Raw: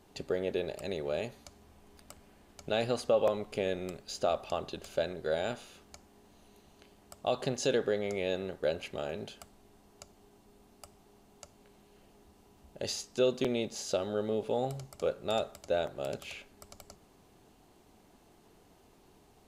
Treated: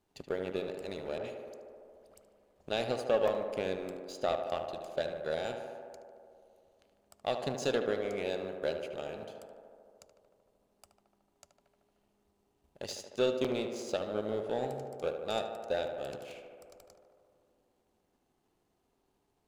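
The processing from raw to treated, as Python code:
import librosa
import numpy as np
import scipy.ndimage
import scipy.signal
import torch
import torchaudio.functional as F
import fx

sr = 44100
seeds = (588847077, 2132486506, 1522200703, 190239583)

y = fx.dispersion(x, sr, late='highs', ms=73.0, hz=1500.0, at=(1.18, 2.61))
y = fx.power_curve(y, sr, exponent=1.4)
y = fx.echo_tape(y, sr, ms=75, feedback_pct=87, wet_db=-6.5, lp_hz=2500.0, drive_db=17.0, wow_cents=12)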